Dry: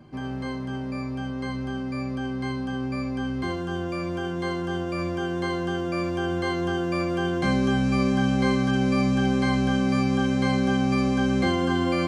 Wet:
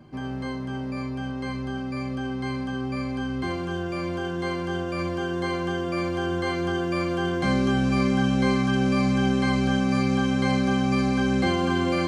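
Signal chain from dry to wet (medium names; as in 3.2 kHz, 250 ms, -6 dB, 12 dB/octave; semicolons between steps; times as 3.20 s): thinning echo 544 ms, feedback 82%, level -11 dB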